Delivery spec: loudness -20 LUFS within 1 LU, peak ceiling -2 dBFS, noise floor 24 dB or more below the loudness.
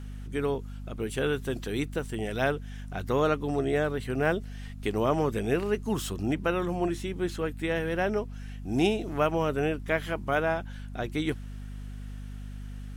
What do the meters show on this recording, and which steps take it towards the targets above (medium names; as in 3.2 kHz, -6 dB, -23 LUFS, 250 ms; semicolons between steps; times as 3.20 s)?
hum 50 Hz; highest harmonic 250 Hz; hum level -37 dBFS; loudness -29.5 LUFS; peak level -12.5 dBFS; loudness target -20.0 LUFS
-> de-hum 50 Hz, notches 5; trim +9.5 dB